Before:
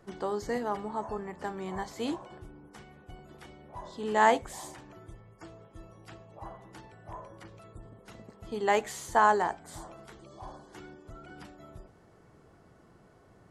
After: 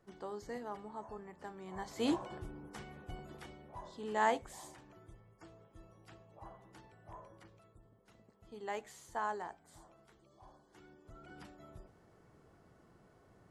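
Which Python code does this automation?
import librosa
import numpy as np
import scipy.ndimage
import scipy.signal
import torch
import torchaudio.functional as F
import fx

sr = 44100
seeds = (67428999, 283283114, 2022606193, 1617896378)

y = fx.gain(x, sr, db=fx.line((1.66, -11.5), (2.12, 1.5), (3.19, 1.5), (4.06, -8.5), (7.33, -8.5), (7.8, -15.0), (10.63, -15.0), (11.33, -5.5)))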